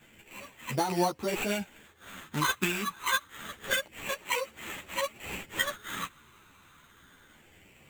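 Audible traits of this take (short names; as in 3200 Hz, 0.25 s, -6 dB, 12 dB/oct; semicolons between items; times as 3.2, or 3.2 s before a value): phasing stages 8, 0.27 Hz, lowest notch 590–1600 Hz; aliases and images of a low sample rate 5100 Hz, jitter 0%; a shimmering, thickened sound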